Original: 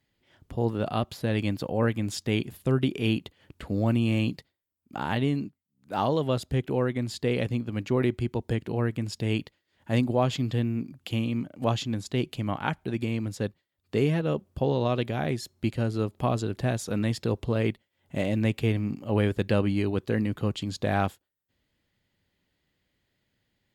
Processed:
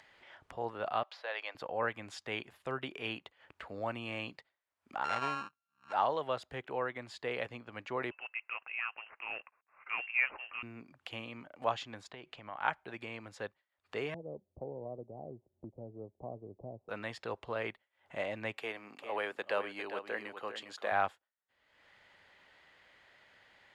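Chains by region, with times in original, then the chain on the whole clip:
1.03–1.55 HPF 510 Hz 24 dB/oct + resonant high shelf 6700 Hz -10 dB, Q 1.5
5.04–5.93 sample sorter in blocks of 32 samples + LPF 8200 Hz 24 dB/oct + high shelf 6000 Hz -3.5 dB
8.11–10.63 CVSD 64 kbps + HPF 480 Hz + inverted band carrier 3000 Hz
12.08–12.6 air absorption 87 m + compressor, threshold -31 dBFS
14.14–16.89 Gaussian blur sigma 17 samples + three-band squash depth 40%
18.58–20.92 HPF 300 Hz + high shelf 9100 Hz +10 dB + echo 0.404 s -9.5 dB
whole clip: Bessel low-pass 6800 Hz, order 2; three-band isolator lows -23 dB, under 600 Hz, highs -12 dB, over 2400 Hz; upward compressor, threshold -45 dBFS

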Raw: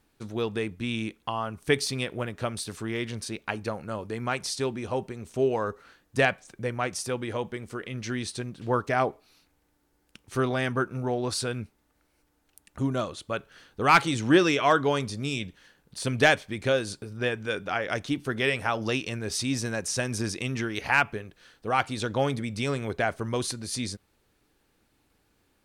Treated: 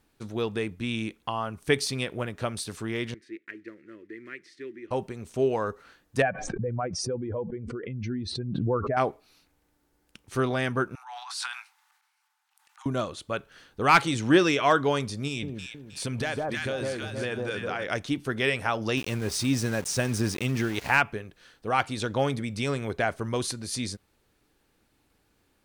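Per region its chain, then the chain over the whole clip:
3.14–4.91 block floating point 5-bit + double band-pass 800 Hz, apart 2.5 oct
6.22–8.97 spectral contrast raised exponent 1.9 + tape spacing loss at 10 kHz 27 dB + backwards sustainer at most 34 dB/s
10.95–12.86 steep high-pass 780 Hz 96 dB/oct + high shelf 10000 Hz -8.5 dB + transient shaper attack -8 dB, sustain +10 dB
15.27–17.84 echo with dull and thin repeats by turns 0.157 s, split 1100 Hz, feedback 59%, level -3 dB + compressor, threshold -26 dBFS
18.97–20.98 low shelf 430 Hz +4.5 dB + sample gate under -36 dBFS
whole clip: dry

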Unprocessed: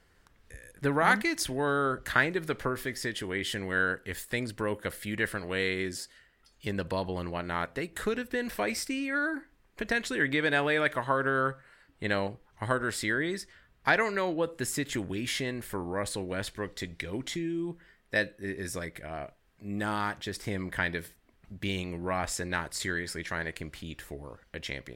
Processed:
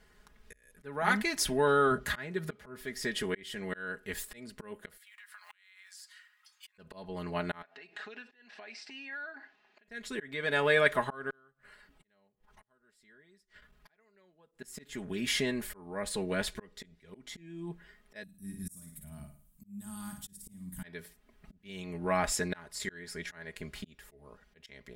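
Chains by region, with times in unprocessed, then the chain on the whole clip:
1.91–2.81 HPF 66 Hz 24 dB/oct + low shelf 180 Hz +9 dB
4.97–6.78 block floating point 7-bit + steep high-pass 1000 Hz + compressor 16:1, threshold -47 dBFS
7.62–9.88 compressor 16:1, threshold -43 dBFS + speaker cabinet 350–5700 Hz, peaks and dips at 480 Hz -5 dB, 750 Hz +9 dB, 1700 Hz +6 dB, 2700 Hz +8 dB, 4200 Hz +5 dB
11.3–14.52 flipped gate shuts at -30 dBFS, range -33 dB + core saturation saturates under 2600 Hz
18.23–20.83 EQ curve 180 Hz 0 dB, 280 Hz -7 dB, 410 Hz -28 dB, 980 Hz -17 dB, 2000 Hz -24 dB, 2900 Hz -15 dB, 5000 Hz -11 dB, 8700 Hz +8 dB, 13000 Hz +11 dB + flutter echo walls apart 9.4 m, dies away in 0.46 s
whole clip: auto swell 0.538 s; comb 4.8 ms, depth 72%

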